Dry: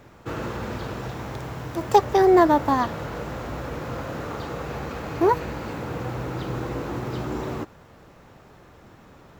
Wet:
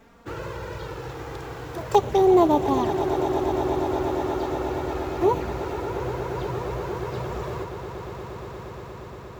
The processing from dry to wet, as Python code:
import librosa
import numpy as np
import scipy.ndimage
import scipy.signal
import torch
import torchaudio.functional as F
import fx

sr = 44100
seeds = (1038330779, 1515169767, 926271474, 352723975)

y = fx.env_flanger(x, sr, rest_ms=4.7, full_db=-16.5)
y = fx.echo_swell(y, sr, ms=118, loudest=8, wet_db=-14.0)